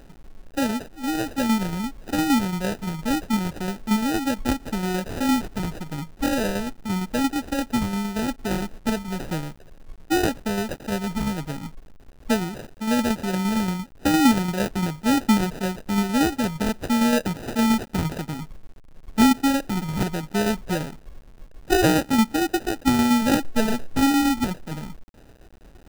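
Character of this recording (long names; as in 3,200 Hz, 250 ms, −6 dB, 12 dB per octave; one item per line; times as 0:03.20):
a quantiser's noise floor 8 bits, dither none
tremolo saw down 8.7 Hz, depth 45%
aliases and images of a low sample rate 1,100 Hz, jitter 0%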